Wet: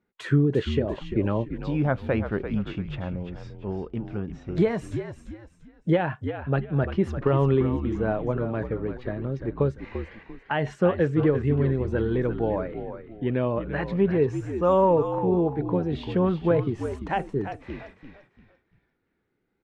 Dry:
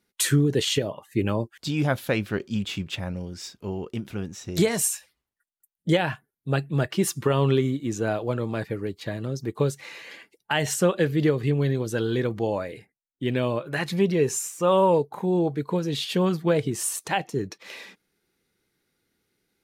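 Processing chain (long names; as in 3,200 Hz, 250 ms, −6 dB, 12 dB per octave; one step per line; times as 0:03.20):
low-pass filter 1,600 Hz 12 dB per octave
on a send: echo with shifted repeats 343 ms, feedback 33%, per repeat −61 Hz, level −9 dB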